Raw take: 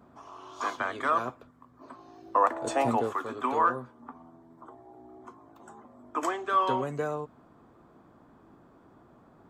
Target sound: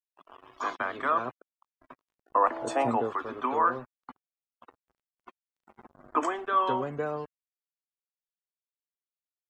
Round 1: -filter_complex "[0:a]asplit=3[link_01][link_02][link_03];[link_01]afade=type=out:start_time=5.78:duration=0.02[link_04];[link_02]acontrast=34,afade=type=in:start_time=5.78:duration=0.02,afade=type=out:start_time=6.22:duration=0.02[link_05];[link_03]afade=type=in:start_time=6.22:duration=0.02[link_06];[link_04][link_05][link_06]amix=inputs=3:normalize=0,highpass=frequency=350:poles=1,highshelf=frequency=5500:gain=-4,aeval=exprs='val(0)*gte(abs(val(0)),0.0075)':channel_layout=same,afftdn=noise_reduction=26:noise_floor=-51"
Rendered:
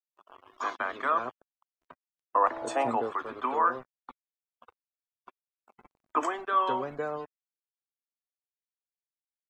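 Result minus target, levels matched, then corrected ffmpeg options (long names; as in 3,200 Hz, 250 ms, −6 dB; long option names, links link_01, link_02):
125 Hz band −6.0 dB
-filter_complex "[0:a]asplit=3[link_01][link_02][link_03];[link_01]afade=type=out:start_time=5.78:duration=0.02[link_04];[link_02]acontrast=34,afade=type=in:start_time=5.78:duration=0.02,afade=type=out:start_time=6.22:duration=0.02[link_05];[link_03]afade=type=in:start_time=6.22:duration=0.02[link_06];[link_04][link_05][link_06]amix=inputs=3:normalize=0,highpass=frequency=110:poles=1,highshelf=frequency=5500:gain=-4,aeval=exprs='val(0)*gte(abs(val(0)),0.0075)':channel_layout=same,afftdn=noise_reduction=26:noise_floor=-51"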